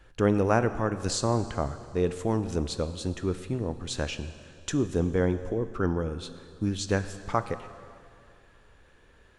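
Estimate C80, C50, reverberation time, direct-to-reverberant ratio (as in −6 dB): 13.0 dB, 12.0 dB, 2.4 s, 11.0 dB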